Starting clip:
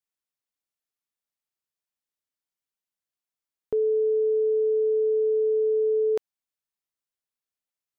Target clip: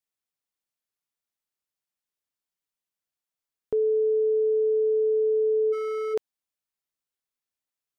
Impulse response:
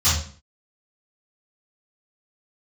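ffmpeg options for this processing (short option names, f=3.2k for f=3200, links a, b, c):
-filter_complex "[0:a]asplit=3[a][b][c];[a]afade=t=out:st=5.72:d=0.02[d];[b]asoftclip=type=hard:threshold=-28dB,afade=t=in:st=5.72:d=0.02,afade=t=out:st=6.13:d=0.02[e];[c]afade=t=in:st=6.13:d=0.02[f];[d][e][f]amix=inputs=3:normalize=0"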